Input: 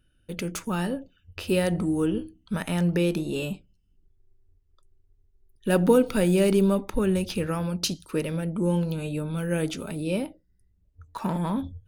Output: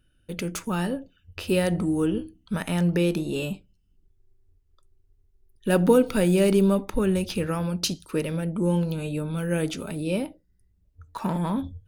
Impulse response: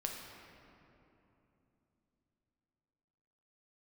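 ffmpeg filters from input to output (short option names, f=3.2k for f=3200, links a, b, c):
-filter_complex "[0:a]asplit=2[a][b];[1:a]atrim=start_sample=2205,atrim=end_sample=3528[c];[b][c]afir=irnorm=-1:irlink=0,volume=-18dB[d];[a][d]amix=inputs=2:normalize=0"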